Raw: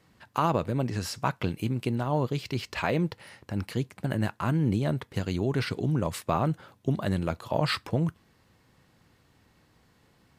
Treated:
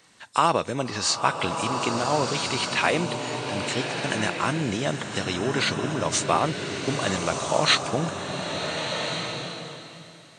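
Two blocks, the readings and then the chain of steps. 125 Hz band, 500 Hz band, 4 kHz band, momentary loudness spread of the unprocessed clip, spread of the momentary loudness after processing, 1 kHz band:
−3.5 dB, +5.0 dB, +13.0 dB, 6 LU, 7 LU, +7.5 dB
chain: hearing-aid frequency compression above 3,400 Hz 1.5 to 1
RIAA equalisation recording
slow-attack reverb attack 1,430 ms, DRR 3.5 dB
level +6 dB

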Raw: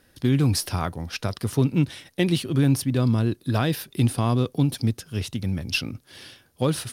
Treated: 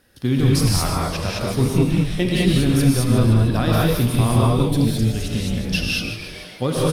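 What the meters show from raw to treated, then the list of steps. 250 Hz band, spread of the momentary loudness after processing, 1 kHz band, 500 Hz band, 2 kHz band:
+5.0 dB, 7 LU, +6.0 dB, +6.0 dB, +6.0 dB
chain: echo with shifted repeats 149 ms, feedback 57%, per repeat −140 Hz, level −9 dB
reverb whose tail is shaped and stops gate 240 ms rising, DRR −4 dB

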